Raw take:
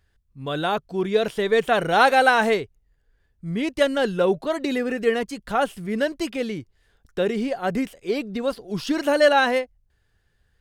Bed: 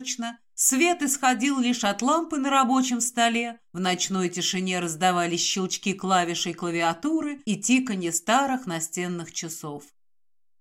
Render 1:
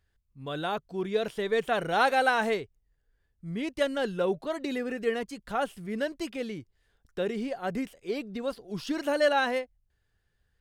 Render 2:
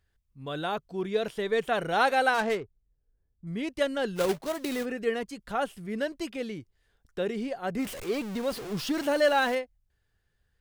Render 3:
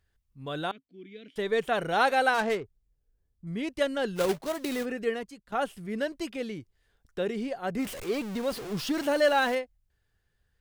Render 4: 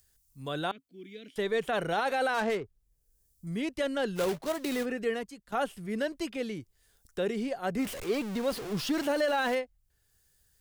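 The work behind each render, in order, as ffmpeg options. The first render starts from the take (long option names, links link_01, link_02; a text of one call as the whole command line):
ffmpeg -i in.wav -af "volume=-7.5dB" out.wav
ffmpeg -i in.wav -filter_complex "[0:a]asettb=1/sr,asplit=3[link_01][link_02][link_03];[link_01]atrim=end=2.344[link_04];[link_02]atrim=start=2.34:end=3.47,asetpts=PTS-STARTPTS,afade=type=in:duration=0.004:curve=qsin,afade=type=out:start_time=1.126:duration=0.004:curve=qsin,adynamicsmooth=sensitivity=6.5:basefreq=720[link_05];[link_03]atrim=start=3.466[link_06];[link_04][link_05]acrossfade=duration=0.004:curve1=hsin:curve2=qsin[link_07];[link_07][link_06]acrossfade=duration=0.004:curve1=qsin:curve2=hsin,asplit=3[link_08][link_09][link_10];[link_08]afade=type=out:start_time=4.15:duration=0.02[link_11];[link_09]acrusher=bits=2:mode=log:mix=0:aa=0.000001,afade=type=in:start_time=4.15:duration=0.02,afade=type=out:start_time=4.84:duration=0.02[link_12];[link_10]afade=type=in:start_time=4.84:duration=0.02[link_13];[link_11][link_12][link_13]amix=inputs=3:normalize=0,asettb=1/sr,asplit=3[link_14][link_15][link_16];[link_14]atrim=end=7.794[link_17];[link_15]atrim=start=7.79:end=9.55,asetpts=PTS-STARTPTS,afade=type=in:duration=0.004:curve=qsin,afade=type=out:start_time=1.756:duration=0.004:curve=qsin,aeval=exprs='val(0)+0.5*0.0188*sgn(val(0))':channel_layout=same[link_18];[link_16]atrim=start=9.546[link_19];[link_17][link_18]acrossfade=duration=0.004:curve1=hsin:curve2=qsin[link_20];[link_20][link_19]acrossfade=duration=0.004:curve1=qsin:curve2=hsin" out.wav
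ffmpeg -i in.wav -filter_complex "[0:a]asettb=1/sr,asplit=3[link_01][link_02][link_03];[link_01]atrim=end=0.714[link_04];[link_02]atrim=start=0.71:end=1.36,asetpts=PTS-STARTPTS,afade=type=in:duration=0.004:curve=qsin,afade=type=out:start_time=0.646:duration=0.004:curve=qsin,asplit=3[link_05][link_06][link_07];[link_05]bandpass=frequency=270:width_type=q:width=8,volume=0dB[link_08];[link_06]bandpass=frequency=2290:width_type=q:width=8,volume=-6dB[link_09];[link_07]bandpass=frequency=3010:width_type=q:width=8,volume=-9dB[link_10];[link_08][link_09][link_10]amix=inputs=3:normalize=0[link_11];[link_03]atrim=start=1.356[link_12];[link_04][link_11]acrossfade=duration=0.004:curve1=hsin:curve2=qsin[link_13];[link_13][link_12]acrossfade=duration=0.004:curve1=qsin:curve2=hsin,asplit=2[link_14][link_15];[link_14]atrim=end=5.52,asetpts=PTS-STARTPTS,afade=type=out:start_time=5.03:duration=0.49:silence=0.149624[link_16];[link_15]atrim=start=5.52,asetpts=PTS-STARTPTS,afade=type=in:duration=0.004:curve=hsin:silence=0.149624[link_17];[link_16][link_17]concat=n=2:v=0:a=1" out.wav
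ffmpeg -i in.wav -filter_complex "[0:a]acrossover=split=330|5800[link_01][link_02][link_03];[link_03]acompressor=mode=upward:threshold=-52dB:ratio=2.5[link_04];[link_01][link_02][link_04]amix=inputs=3:normalize=0,alimiter=limit=-20dB:level=0:latency=1:release=24" out.wav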